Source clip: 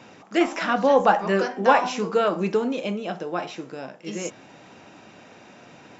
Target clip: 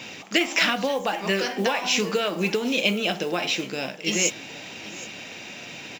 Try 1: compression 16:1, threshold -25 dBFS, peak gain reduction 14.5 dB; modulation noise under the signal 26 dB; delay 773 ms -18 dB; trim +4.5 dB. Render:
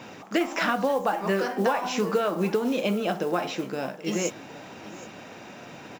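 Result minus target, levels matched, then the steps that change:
4 kHz band -8.5 dB
add after compression: resonant high shelf 1.8 kHz +9.5 dB, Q 1.5

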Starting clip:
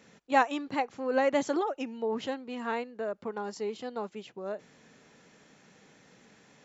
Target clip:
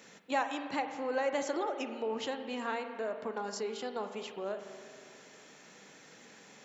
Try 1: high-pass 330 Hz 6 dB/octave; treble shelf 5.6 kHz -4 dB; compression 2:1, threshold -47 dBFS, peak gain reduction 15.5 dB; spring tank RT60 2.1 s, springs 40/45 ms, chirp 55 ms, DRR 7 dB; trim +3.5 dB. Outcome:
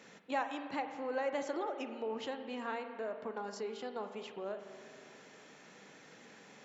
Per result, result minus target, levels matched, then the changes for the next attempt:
8 kHz band -5.0 dB; compression: peak gain reduction +3.5 dB
change: treble shelf 5.6 kHz +6 dB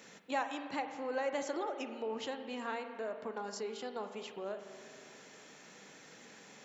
compression: peak gain reduction +3.5 dB
change: compression 2:1, threshold -40 dBFS, peak gain reduction 12 dB

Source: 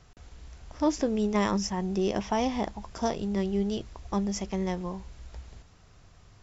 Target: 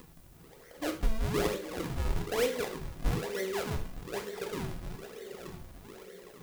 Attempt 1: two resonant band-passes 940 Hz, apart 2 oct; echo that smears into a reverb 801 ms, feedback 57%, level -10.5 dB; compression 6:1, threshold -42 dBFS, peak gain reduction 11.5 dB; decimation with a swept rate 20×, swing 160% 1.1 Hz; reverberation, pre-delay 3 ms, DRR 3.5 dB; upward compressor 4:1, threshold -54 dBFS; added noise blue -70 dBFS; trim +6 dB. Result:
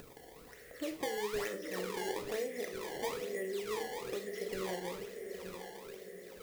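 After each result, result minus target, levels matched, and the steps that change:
compression: peak gain reduction +11.5 dB; decimation with a swept rate: distortion -13 dB
remove: compression 6:1, threshold -42 dBFS, peak gain reduction 11.5 dB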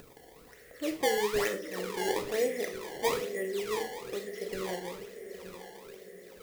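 decimation with a swept rate: distortion -12 dB
change: decimation with a swept rate 56×, swing 160% 1.1 Hz

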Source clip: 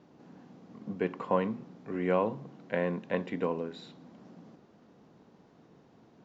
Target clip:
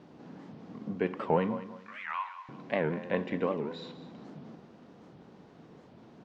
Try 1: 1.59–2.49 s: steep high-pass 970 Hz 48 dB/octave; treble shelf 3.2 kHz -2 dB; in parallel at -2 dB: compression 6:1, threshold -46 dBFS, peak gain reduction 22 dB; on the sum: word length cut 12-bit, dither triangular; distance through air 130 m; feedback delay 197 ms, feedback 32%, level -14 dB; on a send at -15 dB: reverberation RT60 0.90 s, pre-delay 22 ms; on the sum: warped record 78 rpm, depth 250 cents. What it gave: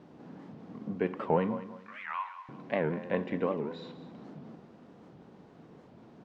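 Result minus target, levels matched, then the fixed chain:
4 kHz band -3.5 dB
1.59–2.49 s: steep high-pass 970 Hz 48 dB/octave; treble shelf 3.2 kHz +5 dB; in parallel at -2 dB: compression 6:1, threshold -46 dBFS, peak gain reduction 22.5 dB; on the sum: word length cut 12-bit, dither triangular; distance through air 130 m; feedback delay 197 ms, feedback 32%, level -14 dB; on a send at -15 dB: reverberation RT60 0.90 s, pre-delay 22 ms; on the sum: warped record 78 rpm, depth 250 cents

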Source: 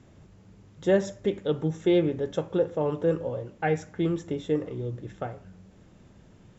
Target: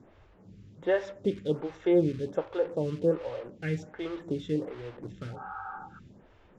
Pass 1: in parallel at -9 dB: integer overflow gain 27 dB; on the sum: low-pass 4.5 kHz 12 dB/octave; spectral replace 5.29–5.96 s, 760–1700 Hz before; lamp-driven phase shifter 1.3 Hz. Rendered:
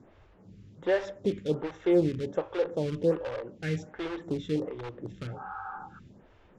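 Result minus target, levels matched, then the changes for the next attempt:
integer overflow: distortion -11 dB
change: integer overflow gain 36 dB

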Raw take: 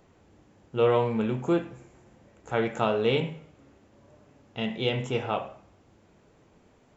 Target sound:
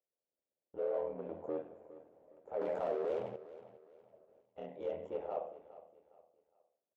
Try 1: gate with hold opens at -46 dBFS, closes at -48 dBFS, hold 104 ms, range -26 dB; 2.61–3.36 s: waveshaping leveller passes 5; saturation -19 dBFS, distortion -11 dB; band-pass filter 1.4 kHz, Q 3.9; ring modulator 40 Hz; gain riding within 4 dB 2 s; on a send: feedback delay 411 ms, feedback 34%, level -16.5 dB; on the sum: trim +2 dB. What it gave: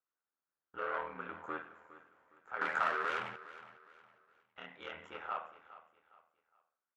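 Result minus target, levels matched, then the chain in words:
500 Hz band -10.5 dB; saturation: distortion -5 dB
gate with hold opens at -46 dBFS, closes at -48 dBFS, hold 104 ms, range -26 dB; 2.61–3.36 s: waveshaping leveller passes 5; saturation -25.5 dBFS, distortion -6 dB; band-pass filter 560 Hz, Q 3.9; ring modulator 40 Hz; gain riding within 4 dB 2 s; on a send: feedback delay 411 ms, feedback 34%, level -16.5 dB; on the sum: trim +2 dB

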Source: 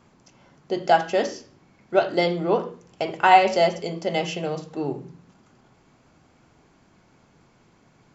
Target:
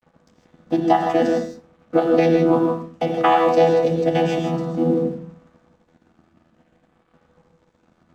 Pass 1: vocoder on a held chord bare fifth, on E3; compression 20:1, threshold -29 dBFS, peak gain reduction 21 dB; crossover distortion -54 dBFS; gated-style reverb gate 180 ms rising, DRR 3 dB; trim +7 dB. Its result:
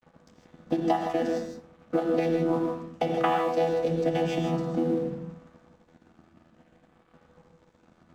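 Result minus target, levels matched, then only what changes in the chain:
compression: peak gain reduction +10 dB
change: compression 20:1, threshold -18.5 dBFS, peak gain reduction 11 dB

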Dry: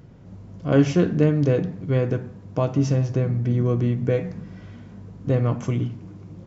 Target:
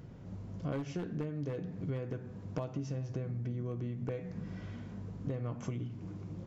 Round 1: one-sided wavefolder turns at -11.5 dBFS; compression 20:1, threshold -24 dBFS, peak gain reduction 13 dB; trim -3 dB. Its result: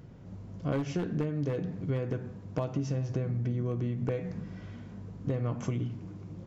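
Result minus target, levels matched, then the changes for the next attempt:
compression: peak gain reduction -6 dB
change: compression 20:1, threshold -30.5 dBFS, peak gain reduction 19 dB

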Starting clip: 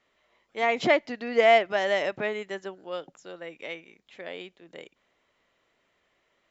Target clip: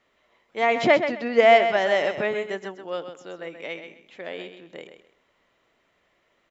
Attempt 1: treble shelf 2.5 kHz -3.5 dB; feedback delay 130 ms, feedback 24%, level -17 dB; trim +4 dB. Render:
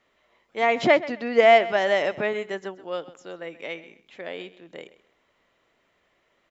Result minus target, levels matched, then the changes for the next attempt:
echo-to-direct -8 dB
change: feedback delay 130 ms, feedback 24%, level -9 dB

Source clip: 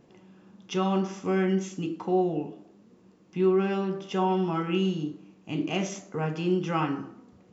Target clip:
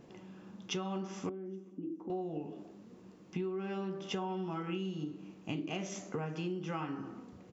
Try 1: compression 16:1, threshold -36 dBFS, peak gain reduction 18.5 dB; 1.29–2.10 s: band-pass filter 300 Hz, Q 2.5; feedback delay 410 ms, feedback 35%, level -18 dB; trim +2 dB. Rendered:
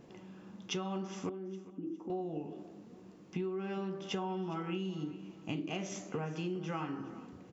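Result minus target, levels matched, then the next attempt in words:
echo-to-direct +11 dB
compression 16:1, threshold -36 dBFS, peak gain reduction 18.5 dB; 1.29–2.10 s: band-pass filter 300 Hz, Q 2.5; feedback delay 410 ms, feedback 35%, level -29 dB; trim +2 dB

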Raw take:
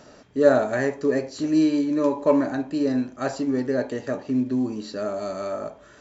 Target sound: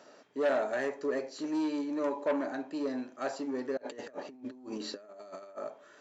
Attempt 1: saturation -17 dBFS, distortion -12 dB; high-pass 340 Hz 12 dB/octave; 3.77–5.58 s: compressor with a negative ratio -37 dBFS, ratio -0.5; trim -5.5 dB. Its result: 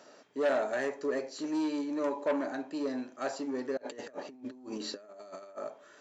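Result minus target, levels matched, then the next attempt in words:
8 kHz band +2.5 dB
saturation -17 dBFS, distortion -12 dB; high-pass 340 Hz 12 dB/octave; treble shelf 5.8 kHz -5 dB; 3.77–5.58 s: compressor with a negative ratio -37 dBFS, ratio -0.5; trim -5.5 dB

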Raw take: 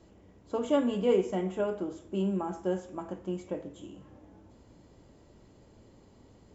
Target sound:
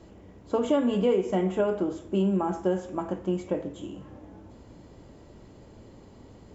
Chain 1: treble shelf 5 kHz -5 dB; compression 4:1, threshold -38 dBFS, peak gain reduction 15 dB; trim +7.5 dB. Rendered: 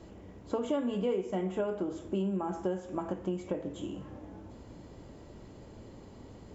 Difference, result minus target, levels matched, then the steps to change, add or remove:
compression: peak gain reduction +7.5 dB
change: compression 4:1, threshold -28 dBFS, peak gain reduction 7.5 dB

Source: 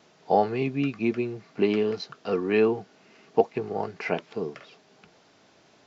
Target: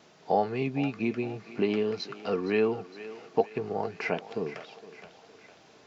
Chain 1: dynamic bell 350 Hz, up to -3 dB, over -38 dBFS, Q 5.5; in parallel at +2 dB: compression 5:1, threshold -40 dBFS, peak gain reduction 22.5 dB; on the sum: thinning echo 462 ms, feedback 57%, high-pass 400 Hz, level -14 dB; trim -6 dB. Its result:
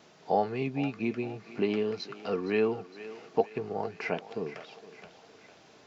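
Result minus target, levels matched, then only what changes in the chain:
compression: peak gain reduction +7 dB
change: compression 5:1, threshold -31 dBFS, peak gain reduction 15.5 dB

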